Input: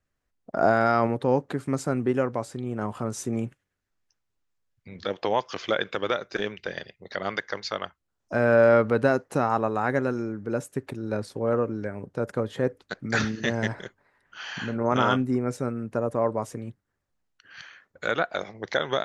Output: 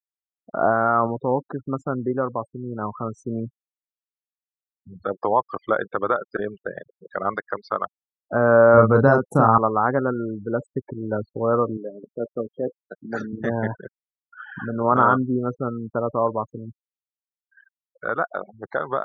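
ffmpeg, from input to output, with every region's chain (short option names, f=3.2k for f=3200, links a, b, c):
-filter_complex "[0:a]asettb=1/sr,asplit=3[a][b][c];[a]atrim=end=8.744[d];[b]atrim=start=8.74:end=9.58,asetpts=PTS-STARTPTS,afade=t=in:d=0.004:c=qsin,afade=t=out:st=0.836:d=0.004:c=qsin,bass=f=250:g=7,treble=f=4k:g=13,asplit=2[e][f];[f]adelay=36,volume=-3.5dB[g];[e][g]amix=inputs=2:normalize=0,atrim=end_sample=37044[h];[c]atrim=start=9.576[i];[d][h]acrossfade=d=0.004:c1=hsin:c2=qsin[j];[j][i]acrossfade=d=0.004:c1=qsin:c2=hsin,asettb=1/sr,asplit=3[k][l][m];[k]atrim=end=11.774[n];[l]atrim=start=11.77:end=13.33,asetpts=PTS-STARTPTS,afade=t=in:d=0.004:c=qsin,afade=t=out:st=1.556:d=0.004:c=qsin,highpass=260,equalizer=f=1.3k:w=0.71:g=-10,asplit=2[o][p];[p]adelay=17,volume=-11.5dB[q];[o][q]amix=inputs=2:normalize=0,atrim=end_sample=68796[r];[m]atrim=start=13.326[s];[n][r]acrossfade=d=0.004:c1=hsin:c2=qsin[t];[t][s]acrossfade=d=0.004:c1=qsin:c2=hsin,afftfilt=real='re*gte(hypot(re,im),0.0316)':imag='im*gte(hypot(re,im),0.0316)':win_size=1024:overlap=0.75,highshelf=f=1.8k:t=q:w=3:g=-13.5,dynaudnorm=f=500:g=17:m=11.5dB,volume=-1dB"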